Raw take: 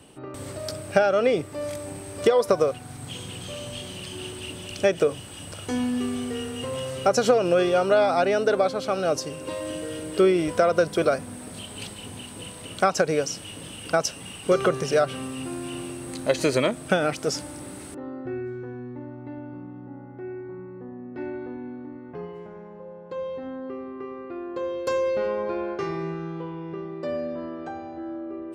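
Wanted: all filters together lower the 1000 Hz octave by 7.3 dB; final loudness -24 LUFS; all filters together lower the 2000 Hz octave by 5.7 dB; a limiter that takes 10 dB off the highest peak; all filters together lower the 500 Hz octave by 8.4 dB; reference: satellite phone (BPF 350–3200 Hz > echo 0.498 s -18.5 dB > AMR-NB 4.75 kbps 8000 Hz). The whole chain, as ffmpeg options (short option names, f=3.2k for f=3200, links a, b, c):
-af "equalizer=f=500:t=o:g=-7,equalizer=f=1k:t=o:g=-6.5,equalizer=f=2k:t=o:g=-4,alimiter=limit=-20dB:level=0:latency=1,highpass=350,lowpass=3.2k,aecho=1:1:498:0.119,volume=13.5dB" -ar 8000 -c:a libopencore_amrnb -b:a 4750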